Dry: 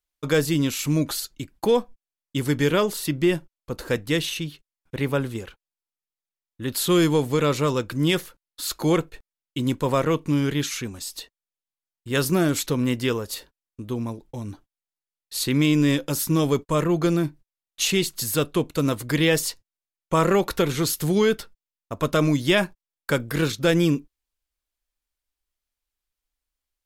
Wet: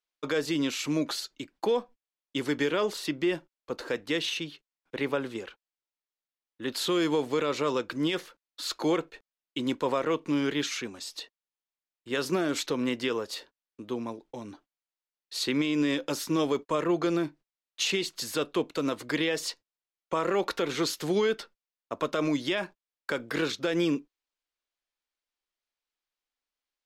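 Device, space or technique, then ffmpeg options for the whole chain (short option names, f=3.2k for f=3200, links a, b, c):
DJ mixer with the lows and highs turned down: -filter_complex "[0:a]acrossover=split=240 6400:gain=0.112 1 0.158[a][b][c];[a][b][c]amix=inputs=3:normalize=0,alimiter=limit=-16.5dB:level=0:latency=1:release=96,volume=-1dB"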